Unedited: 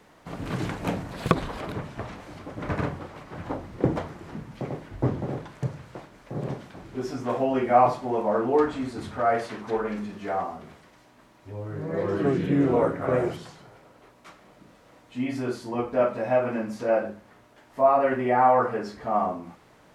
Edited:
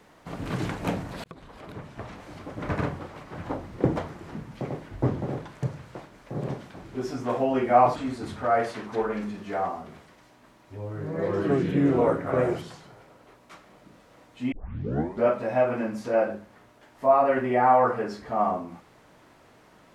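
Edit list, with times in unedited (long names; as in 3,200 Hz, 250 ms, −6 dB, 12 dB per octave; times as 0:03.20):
0:01.24–0:02.41: fade in
0:07.96–0:08.71: remove
0:15.27: tape start 0.76 s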